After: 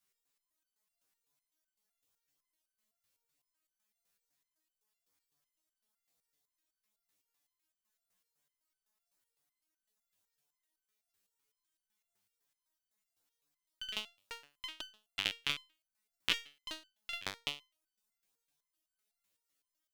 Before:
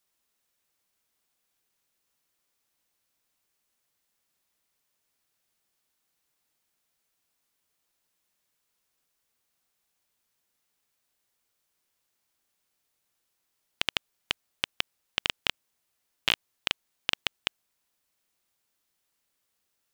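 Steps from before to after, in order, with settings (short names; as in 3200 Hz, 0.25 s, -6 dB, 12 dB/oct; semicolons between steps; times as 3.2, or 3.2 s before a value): LFO notch saw up 3.7 Hz 360–3700 Hz; crackling interface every 0.14 s, samples 256, repeat, from 0.73; stepped resonator 7.9 Hz 98–1500 Hz; gain +6.5 dB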